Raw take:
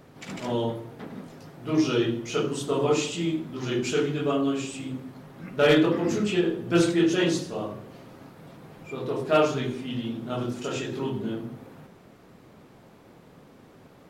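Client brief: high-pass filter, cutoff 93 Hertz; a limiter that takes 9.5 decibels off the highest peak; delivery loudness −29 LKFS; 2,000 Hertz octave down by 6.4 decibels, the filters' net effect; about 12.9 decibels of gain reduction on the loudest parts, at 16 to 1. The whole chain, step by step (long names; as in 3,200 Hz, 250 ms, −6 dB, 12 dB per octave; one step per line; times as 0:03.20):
high-pass filter 93 Hz
parametric band 2,000 Hz −9 dB
downward compressor 16 to 1, threshold −29 dBFS
level +9.5 dB
brickwall limiter −19.5 dBFS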